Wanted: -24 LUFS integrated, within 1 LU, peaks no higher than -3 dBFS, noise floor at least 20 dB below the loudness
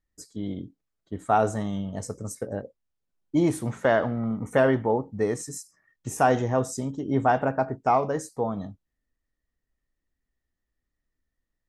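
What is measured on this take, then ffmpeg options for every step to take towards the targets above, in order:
loudness -26.0 LUFS; peak level -8.0 dBFS; loudness target -24.0 LUFS
-> -af "volume=1.26"

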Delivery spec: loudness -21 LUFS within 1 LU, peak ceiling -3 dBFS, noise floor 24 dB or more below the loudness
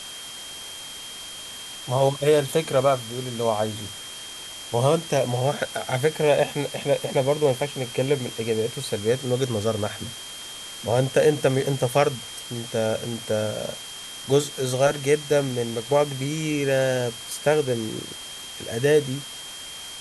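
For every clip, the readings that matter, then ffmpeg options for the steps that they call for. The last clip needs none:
steady tone 3.2 kHz; tone level -38 dBFS; noise floor -38 dBFS; noise floor target -49 dBFS; loudness -24.5 LUFS; peak level -6.0 dBFS; loudness target -21.0 LUFS
-> -af "bandreject=f=3200:w=30"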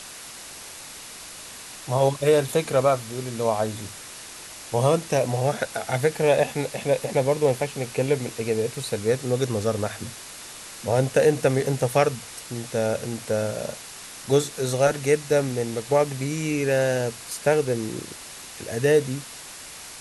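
steady tone not found; noise floor -41 dBFS; noise floor target -48 dBFS
-> -af "afftdn=nr=7:nf=-41"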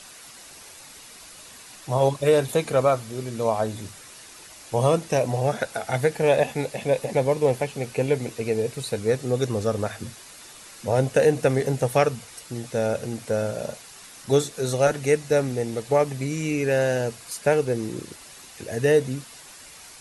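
noise floor -45 dBFS; noise floor target -48 dBFS
-> -af "afftdn=nr=6:nf=-45"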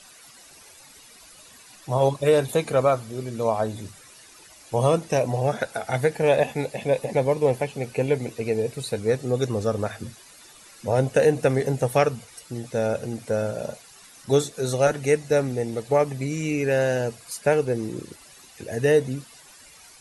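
noise floor -50 dBFS; loudness -24.0 LUFS; peak level -6.5 dBFS; loudness target -21.0 LUFS
-> -af "volume=1.41"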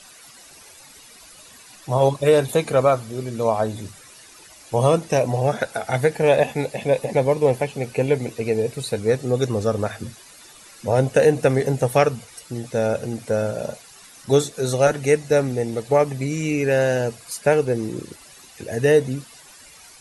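loudness -21.0 LUFS; peak level -3.5 dBFS; noise floor -47 dBFS

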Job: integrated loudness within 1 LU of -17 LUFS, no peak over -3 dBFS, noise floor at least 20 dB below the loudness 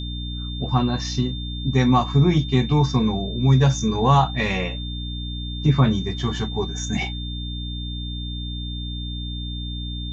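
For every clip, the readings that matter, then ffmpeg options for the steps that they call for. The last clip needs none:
hum 60 Hz; highest harmonic 300 Hz; hum level -27 dBFS; steady tone 3.6 kHz; tone level -34 dBFS; loudness -22.5 LUFS; peak level -6.0 dBFS; loudness target -17.0 LUFS
-> -af "bandreject=f=60:t=h:w=6,bandreject=f=120:t=h:w=6,bandreject=f=180:t=h:w=6,bandreject=f=240:t=h:w=6,bandreject=f=300:t=h:w=6"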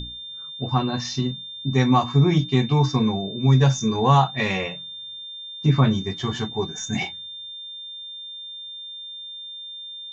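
hum not found; steady tone 3.6 kHz; tone level -34 dBFS
-> -af "bandreject=f=3600:w=30"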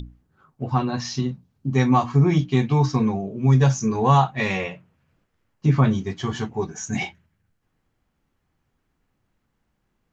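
steady tone not found; loudness -21.5 LUFS; peak level -5.5 dBFS; loudness target -17.0 LUFS
-> -af "volume=1.68,alimiter=limit=0.708:level=0:latency=1"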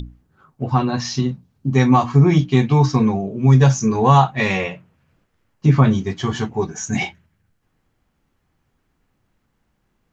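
loudness -17.5 LUFS; peak level -3.0 dBFS; noise floor -69 dBFS

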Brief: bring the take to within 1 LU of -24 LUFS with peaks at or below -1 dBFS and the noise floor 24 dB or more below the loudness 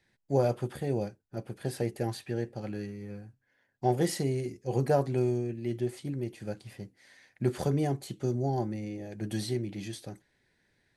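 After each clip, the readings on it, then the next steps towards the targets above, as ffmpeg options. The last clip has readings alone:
loudness -32.5 LUFS; peak level -13.0 dBFS; loudness target -24.0 LUFS
-> -af "volume=2.66"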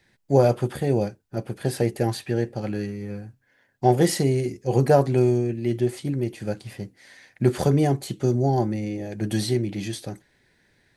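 loudness -24.0 LUFS; peak level -4.5 dBFS; noise floor -67 dBFS

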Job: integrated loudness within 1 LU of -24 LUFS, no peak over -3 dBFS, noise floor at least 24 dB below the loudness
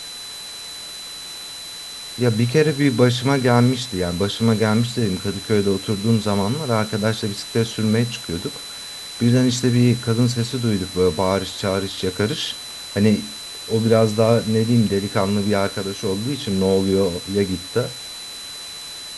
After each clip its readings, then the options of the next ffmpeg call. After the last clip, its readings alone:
steady tone 4 kHz; tone level -33 dBFS; noise floor -34 dBFS; noise floor target -44 dBFS; loudness -20.0 LUFS; peak level -2.0 dBFS; loudness target -24.0 LUFS
-> -af "bandreject=f=4000:w=30"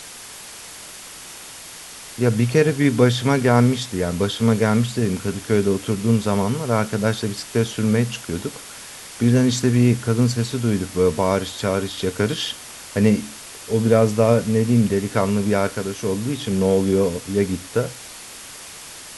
steady tone not found; noise floor -38 dBFS; noise floor target -44 dBFS
-> -af "afftdn=nr=6:nf=-38"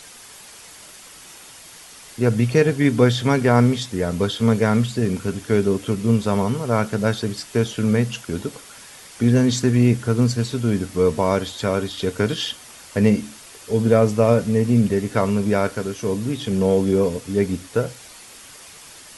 noise floor -43 dBFS; noise floor target -45 dBFS
-> -af "afftdn=nr=6:nf=-43"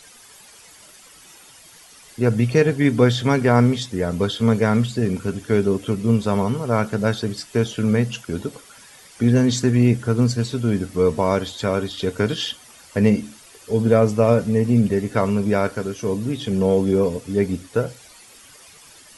noise floor -47 dBFS; loudness -20.5 LUFS; peak level -2.0 dBFS; loudness target -24.0 LUFS
-> -af "volume=0.668"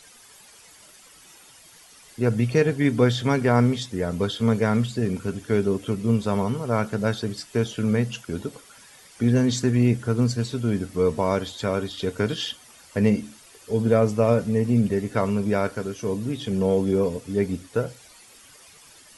loudness -24.0 LUFS; peak level -5.5 dBFS; noise floor -51 dBFS

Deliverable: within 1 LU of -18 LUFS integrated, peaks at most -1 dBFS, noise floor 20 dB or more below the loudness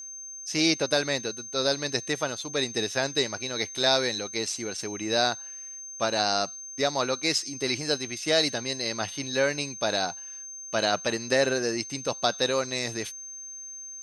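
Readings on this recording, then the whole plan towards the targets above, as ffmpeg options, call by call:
steady tone 6.3 kHz; tone level -38 dBFS; loudness -27.0 LUFS; peak level -8.5 dBFS; loudness target -18.0 LUFS
-> -af "bandreject=f=6300:w=30"
-af "volume=2.82,alimiter=limit=0.891:level=0:latency=1"

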